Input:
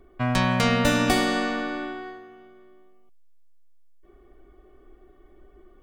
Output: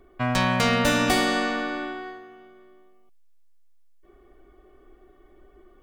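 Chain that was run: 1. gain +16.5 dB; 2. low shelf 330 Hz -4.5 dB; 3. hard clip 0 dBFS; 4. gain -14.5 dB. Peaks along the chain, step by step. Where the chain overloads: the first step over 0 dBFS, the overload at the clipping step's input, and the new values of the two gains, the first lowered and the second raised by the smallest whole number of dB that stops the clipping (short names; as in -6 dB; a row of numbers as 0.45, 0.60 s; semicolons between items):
+9.0, +7.0, 0.0, -14.5 dBFS; step 1, 7.0 dB; step 1 +9.5 dB, step 4 -7.5 dB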